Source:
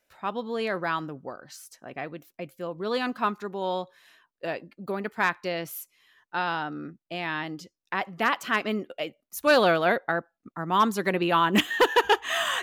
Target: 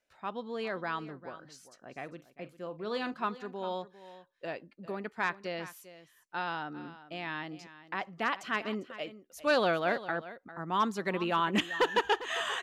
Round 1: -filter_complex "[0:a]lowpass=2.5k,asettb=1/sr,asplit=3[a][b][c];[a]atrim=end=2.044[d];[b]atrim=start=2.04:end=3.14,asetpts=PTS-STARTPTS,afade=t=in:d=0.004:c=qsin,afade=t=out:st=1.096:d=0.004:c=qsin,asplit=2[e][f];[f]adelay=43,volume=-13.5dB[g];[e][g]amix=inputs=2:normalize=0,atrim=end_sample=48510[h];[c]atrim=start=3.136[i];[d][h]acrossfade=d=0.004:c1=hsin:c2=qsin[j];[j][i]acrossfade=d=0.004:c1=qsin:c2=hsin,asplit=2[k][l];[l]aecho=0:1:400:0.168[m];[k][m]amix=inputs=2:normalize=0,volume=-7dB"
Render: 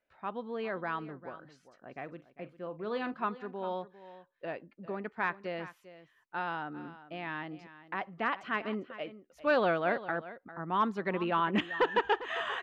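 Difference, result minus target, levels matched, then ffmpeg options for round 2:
8000 Hz band -16.5 dB
-filter_complex "[0:a]lowpass=8.1k,asettb=1/sr,asplit=3[a][b][c];[a]atrim=end=2.044[d];[b]atrim=start=2.04:end=3.14,asetpts=PTS-STARTPTS,afade=t=in:d=0.004:c=qsin,afade=t=out:st=1.096:d=0.004:c=qsin,asplit=2[e][f];[f]adelay=43,volume=-13.5dB[g];[e][g]amix=inputs=2:normalize=0,atrim=end_sample=48510[h];[c]atrim=start=3.136[i];[d][h]acrossfade=d=0.004:c1=hsin:c2=qsin[j];[j][i]acrossfade=d=0.004:c1=qsin:c2=hsin,asplit=2[k][l];[l]aecho=0:1:400:0.168[m];[k][m]amix=inputs=2:normalize=0,volume=-7dB"

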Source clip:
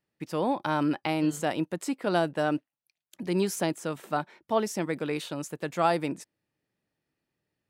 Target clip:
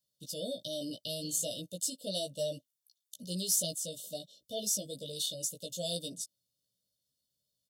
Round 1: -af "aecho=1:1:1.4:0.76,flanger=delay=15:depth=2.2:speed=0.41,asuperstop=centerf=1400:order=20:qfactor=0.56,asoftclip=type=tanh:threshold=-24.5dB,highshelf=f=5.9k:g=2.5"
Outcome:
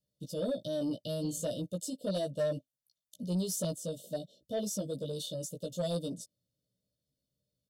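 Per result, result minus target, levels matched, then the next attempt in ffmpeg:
soft clip: distortion +12 dB; 1000 Hz band +5.5 dB
-af "aecho=1:1:1.4:0.76,flanger=delay=15:depth=2.2:speed=0.41,asuperstop=centerf=1400:order=20:qfactor=0.56,asoftclip=type=tanh:threshold=-17dB,highshelf=f=5.9k:g=2.5"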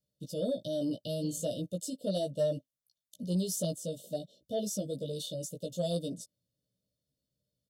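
1000 Hz band +5.0 dB
-af "aecho=1:1:1.4:0.76,flanger=delay=15:depth=2.2:speed=0.41,asuperstop=centerf=1400:order=20:qfactor=0.56,tiltshelf=f=1.4k:g=-8.5,asoftclip=type=tanh:threshold=-17dB,highshelf=f=5.9k:g=2.5"

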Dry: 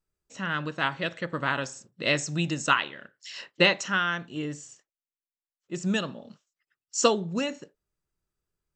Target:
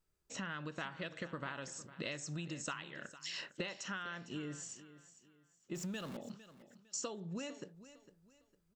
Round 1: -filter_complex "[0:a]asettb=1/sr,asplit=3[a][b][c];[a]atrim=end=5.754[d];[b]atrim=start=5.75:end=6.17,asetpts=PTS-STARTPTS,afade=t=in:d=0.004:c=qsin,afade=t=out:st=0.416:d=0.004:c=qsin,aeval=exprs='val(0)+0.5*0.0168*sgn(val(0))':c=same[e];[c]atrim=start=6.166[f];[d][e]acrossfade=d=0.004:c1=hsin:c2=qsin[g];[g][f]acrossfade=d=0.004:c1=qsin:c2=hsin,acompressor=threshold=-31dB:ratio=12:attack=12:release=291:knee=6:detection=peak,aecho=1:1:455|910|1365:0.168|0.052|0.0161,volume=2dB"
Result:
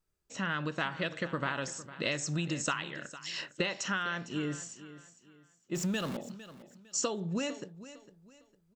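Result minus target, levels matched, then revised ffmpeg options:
compressor: peak gain reduction -9.5 dB
-filter_complex "[0:a]asettb=1/sr,asplit=3[a][b][c];[a]atrim=end=5.754[d];[b]atrim=start=5.75:end=6.17,asetpts=PTS-STARTPTS,afade=t=in:d=0.004:c=qsin,afade=t=out:st=0.416:d=0.004:c=qsin,aeval=exprs='val(0)+0.5*0.0168*sgn(val(0))':c=same[e];[c]atrim=start=6.166[f];[d][e]acrossfade=d=0.004:c1=hsin:c2=qsin[g];[g][f]acrossfade=d=0.004:c1=qsin:c2=hsin,acompressor=threshold=-41.5dB:ratio=12:attack=12:release=291:knee=6:detection=peak,aecho=1:1:455|910|1365:0.168|0.052|0.0161,volume=2dB"

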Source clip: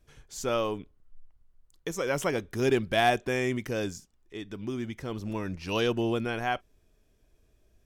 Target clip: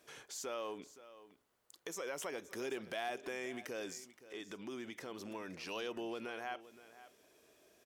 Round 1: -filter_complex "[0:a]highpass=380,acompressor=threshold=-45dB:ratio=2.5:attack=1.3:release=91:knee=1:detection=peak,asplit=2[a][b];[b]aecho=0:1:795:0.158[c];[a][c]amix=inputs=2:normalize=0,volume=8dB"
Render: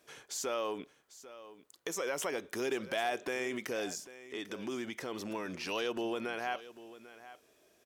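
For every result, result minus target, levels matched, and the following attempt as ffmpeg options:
echo 0.274 s late; compressor: peak gain reduction -6.5 dB
-filter_complex "[0:a]highpass=380,acompressor=threshold=-45dB:ratio=2.5:attack=1.3:release=91:knee=1:detection=peak,asplit=2[a][b];[b]aecho=0:1:521:0.158[c];[a][c]amix=inputs=2:normalize=0,volume=8dB"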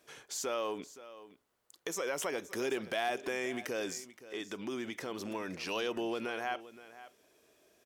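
compressor: peak gain reduction -6.5 dB
-filter_complex "[0:a]highpass=380,acompressor=threshold=-56dB:ratio=2.5:attack=1.3:release=91:knee=1:detection=peak,asplit=2[a][b];[b]aecho=0:1:521:0.158[c];[a][c]amix=inputs=2:normalize=0,volume=8dB"

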